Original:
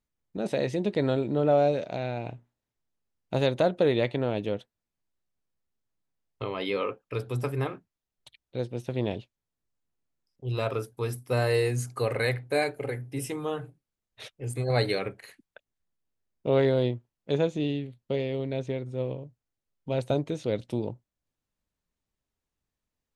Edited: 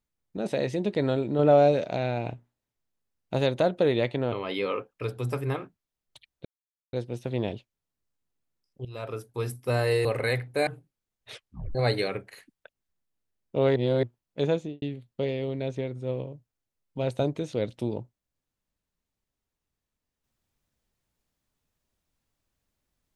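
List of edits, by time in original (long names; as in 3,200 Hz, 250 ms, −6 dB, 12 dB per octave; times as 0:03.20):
0:01.39–0:02.34: clip gain +3.5 dB
0:04.32–0:06.43: remove
0:08.56: splice in silence 0.48 s
0:10.48–0:11.03: fade in, from −15.5 dB
0:11.68–0:12.01: remove
0:12.63–0:13.58: remove
0:14.24: tape stop 0.42 s
0:16.67–0:16.94: reverse
0:17.47–0:17.73: fade out and dull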